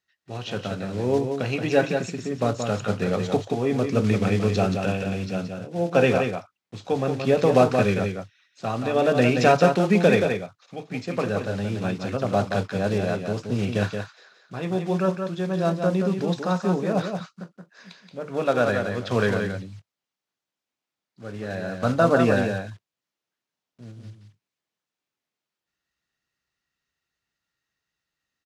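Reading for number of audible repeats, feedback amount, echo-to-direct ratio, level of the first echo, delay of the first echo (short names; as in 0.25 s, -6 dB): 1, no steady repeat, -6.0 dB, -6.0 dB, 0.176 s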